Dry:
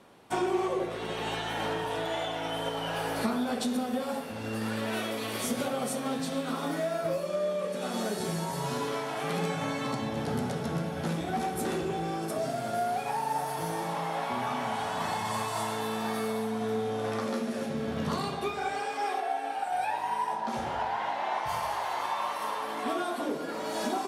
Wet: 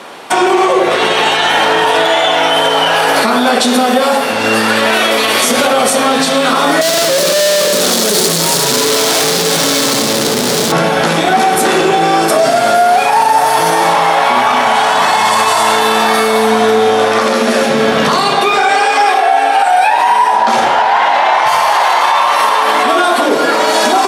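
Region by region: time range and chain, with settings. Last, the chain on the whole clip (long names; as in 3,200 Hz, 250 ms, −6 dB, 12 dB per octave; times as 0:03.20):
0:06.81–0:10.72: sign of each sample alone + flat-topped bell 1,400 Hz −9.5 dB 2.4 octaves
whole clip: meter weighting curve A; boost into a limiter +28.5 dB; level −1 dB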